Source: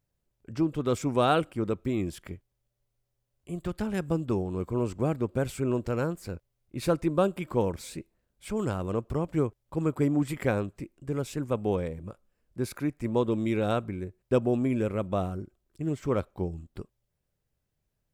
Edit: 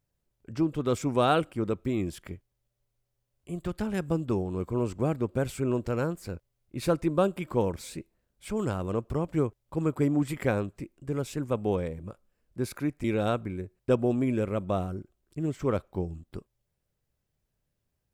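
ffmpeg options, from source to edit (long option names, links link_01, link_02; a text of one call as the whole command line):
ffmpeg -i in.wav -filter_complex "[0:a]asplit=2[link_01][link_02];[link_01]atrim=end=13.042[link_03];[link_02]atrim=start=13.468[link_04];[link_03][link_04]acrossfade=duration=0.004:curve1=hsin:curve2=hsin" out.wav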